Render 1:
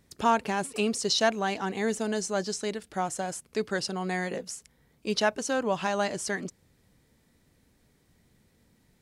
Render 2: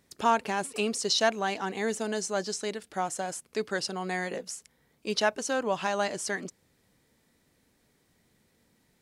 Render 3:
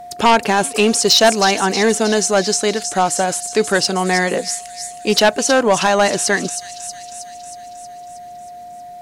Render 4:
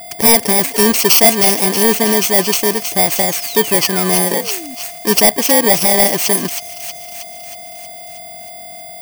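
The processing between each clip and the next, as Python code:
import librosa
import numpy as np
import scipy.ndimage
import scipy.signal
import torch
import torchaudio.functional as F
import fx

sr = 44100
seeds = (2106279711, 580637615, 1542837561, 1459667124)

y1 = fx.low_shelf(x, sr, hz=160.0, db=-10.0)
y2 = fx.echo_wet_highpass(y1, sr, ms=317, feedback_pct=63, hz=5300.0, wet_db=-5)
y2 = y2 + 10.0 ** (-48.0 / 20.0) * np.sin(2.0 * np.pi * 710.0 * np.arange(len(y2)) / sr)
y2 = fx.fold_sine(y2, sr, drive_db=6, ceiling_db=-11.5)
y2 = F.gain(torch.from_numpy(y2), 6.0).numpy()
y3 = fx.bit_reversed(y2, sr, seeds[0], block=32)
y3 = fx.spec_paint(y3, sr, seeds[1], shape='fall', start_s=3.19, length_s=1.56, low_hz=240.0, high_hz=8600.0, level_db=-34.0)
y3 = F.gain(torch.from_numpy(y3), 2.5).numpy()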